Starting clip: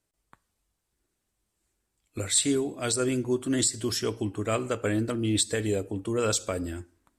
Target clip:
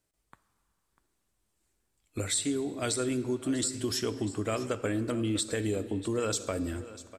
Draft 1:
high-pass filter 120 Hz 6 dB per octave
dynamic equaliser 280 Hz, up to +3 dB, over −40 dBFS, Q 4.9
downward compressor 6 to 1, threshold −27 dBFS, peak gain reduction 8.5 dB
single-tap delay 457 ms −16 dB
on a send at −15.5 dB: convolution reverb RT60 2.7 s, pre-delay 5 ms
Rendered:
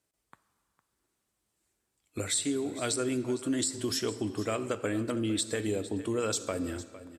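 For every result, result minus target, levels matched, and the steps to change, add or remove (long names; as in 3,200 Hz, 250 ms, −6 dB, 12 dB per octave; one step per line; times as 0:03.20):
echo 189 ms early; 125 Hz band −2.5 dB
change: single-tap delay 646 ms −16 dB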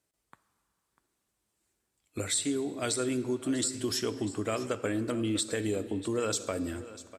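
125 Hz band −2.5 dB
remove: high-pass filter 120 Hz 6 dB per octave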